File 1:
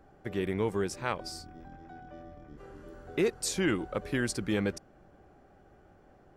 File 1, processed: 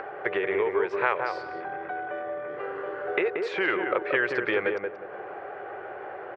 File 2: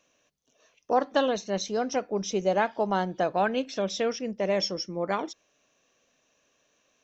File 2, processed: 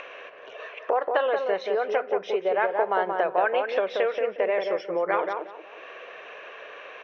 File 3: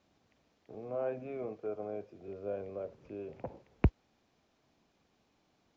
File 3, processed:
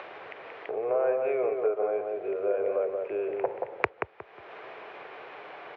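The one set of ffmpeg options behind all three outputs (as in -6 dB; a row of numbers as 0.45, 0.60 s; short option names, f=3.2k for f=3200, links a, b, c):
-filter_complex "[0:a]asplit=2[a][b];[b]alimiter=limit=-22.5dB:level=0:latency=1:release=68,volume=-0.5dB[c];[a][c]amix=inputs=2:normalize=0,highpass=f=100:w=0.5412,highpass=f=100:w=1.3066,lowshelf=f=320:t=q:w=3:g=-9,acompressor=threshold=-30dB:ratio=4,lowpass=f=2.3k:w=0.5412,lowpass=f=2.3k:w=1.3066,tiltshelf=f=720:g=-8.5,asplit=2[d][e];[e]adelay=180,lowpass=f=1.2k:p=1,volume=-3dB,asplit=2[f][g];[g]adelay=180,lowpass=f=1.2k:p=1,volume=0.23,asplit=2[h][i];[i]adelay=180,lowpass=f=1.2k:p=1,volume=0.23[j];[d][f][h][j]amix=inputs=4:normalize=0,acompressor=mode=upward:threshold=-37dB:ratio=2.5,volume=7.5dB"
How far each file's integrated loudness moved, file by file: +3.0, +2.5, +9.5 LU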